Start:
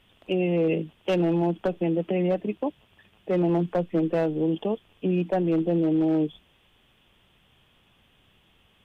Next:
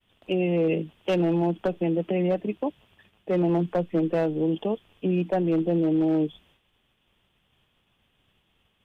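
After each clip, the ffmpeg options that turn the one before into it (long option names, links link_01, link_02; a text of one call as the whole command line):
ffmpeg -i in.wav -af "agate=range=-33dB:threshold=-55dB:ratio=3:detection=peak" out.wav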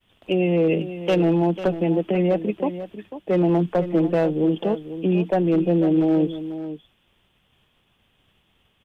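ffmpeg -i in.wav -af "aecho=1:1:495:0.251,volume=4dB" out.wav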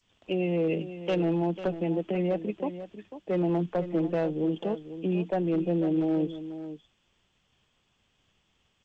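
ffmpeg -i in.wav -af "volume=-7.5dB" -ar 16000 -c:a g722 out.g722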